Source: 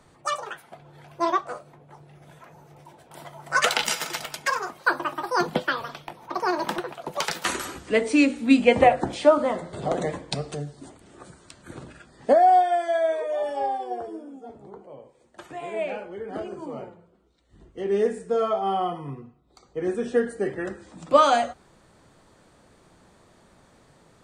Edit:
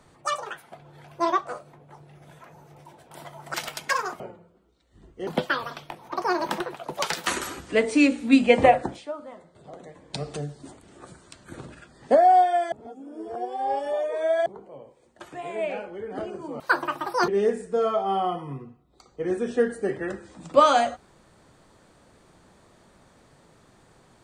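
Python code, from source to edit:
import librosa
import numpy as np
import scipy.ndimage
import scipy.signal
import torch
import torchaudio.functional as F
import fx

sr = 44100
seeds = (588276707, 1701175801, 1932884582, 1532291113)

y = fx.edit(x, sr, fx.cut(start_s=3.54, length_s=0.57),
    fx.swap(start_s=4.77, length_s=0.68, other_s=16.78, other_length_s=1.07),
    fx.fade_down_up(start_s=8.92, length_s=1.55, db=-17.5, fade_s=0.31),
    fx.reverse_span(start_s=12.9, length_s=1.74), tone=tone)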